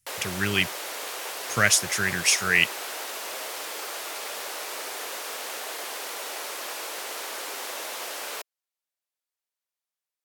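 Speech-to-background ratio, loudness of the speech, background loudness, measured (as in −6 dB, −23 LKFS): 10.0 dB, −23.0 LKFS, −33.0 LKFS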